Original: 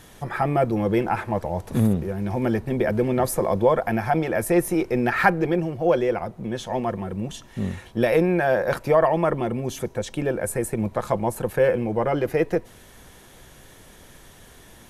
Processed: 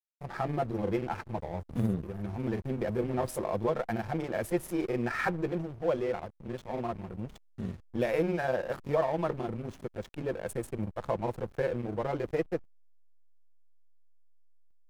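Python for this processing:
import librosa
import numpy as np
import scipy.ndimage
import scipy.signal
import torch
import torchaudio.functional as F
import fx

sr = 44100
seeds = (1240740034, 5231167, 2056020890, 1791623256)

y = fx.granulator(x, sr, seeds[0], grain_ms=100.0, per_s=20.0, spray_ms=26.0, spread_st=0)
y = fx.backlash(y, sr, play_db=-28.5)
y = y * 10.0 ** (-7.5 / 20.0)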